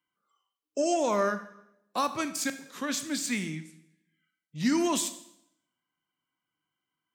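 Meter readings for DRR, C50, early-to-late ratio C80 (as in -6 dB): 10.0 dB, 13.0 dB, 15.0 dB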